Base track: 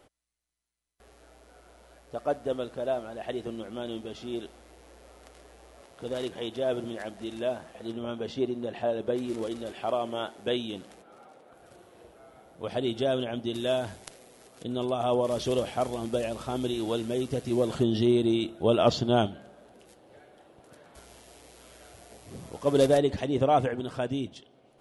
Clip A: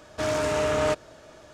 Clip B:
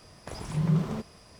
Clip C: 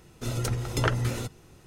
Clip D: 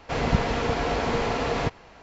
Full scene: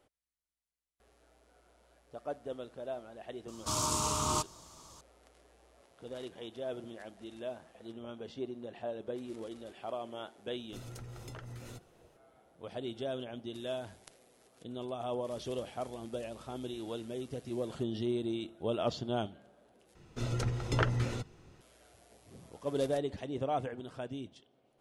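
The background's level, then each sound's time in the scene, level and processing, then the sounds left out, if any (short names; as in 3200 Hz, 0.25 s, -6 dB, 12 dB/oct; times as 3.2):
base track -10.5 dB
3.48 add A -4 dB + EQ curve 190 Hz 0 dB, 590 Hz -15 dB, 1100 Hz +8 dB, 1700 Hz -21 dB, 3100 Hz -1 dB, 4600 Hz +6 dB, 7600 Hz +11 dB
10.51 add C -14 dB + compressor, threshold -28 dBFS
19.95 replace with C -4 dB + air absorption 68 m
not used: B, D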